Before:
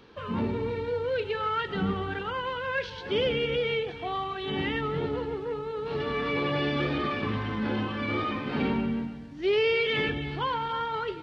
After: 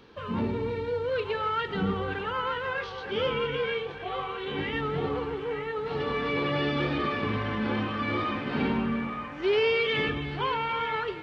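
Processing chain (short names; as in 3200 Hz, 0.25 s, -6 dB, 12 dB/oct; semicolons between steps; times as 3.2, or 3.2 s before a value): 2.73–4.73 chorus 1.5 Hz, delay 19 ms, depth 5.1 ms; band-limited delay 0.924 s, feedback 48%, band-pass 1200 Hz, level -5 dB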